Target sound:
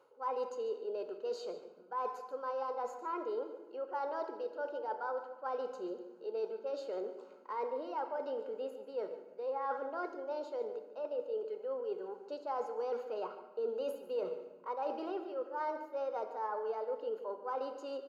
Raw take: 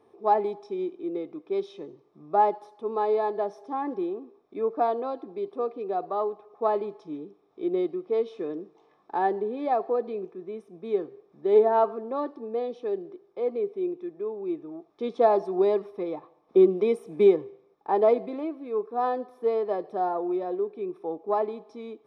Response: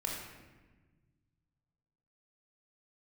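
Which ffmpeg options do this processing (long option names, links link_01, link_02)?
-filter_complex "[0:a]highpass=frequency=420:poles=1,bandreject=frequency=1700:width=16,areverse,acompressor=threshold=-37dB:ratio=6,areverse,asetrate=53802,aresample=44100,asplit=2[link_01][link_02];[link_02]adelay=145.8,volume=-13dB,highshelf=frequency=4000:gain=-3.28[link_03];[link_01][link_03]amix=inputs=2:normalize=0,asplit=2[link_04][link_05];[1:a]atrim=start_sample=2205[link_06];[link_05][link_06]afir=irnorm=-1:irlink=0,volume=-7dB[link_07];[link_04][link_07]amix=inputs=2:normalize=0,volume=-2dB"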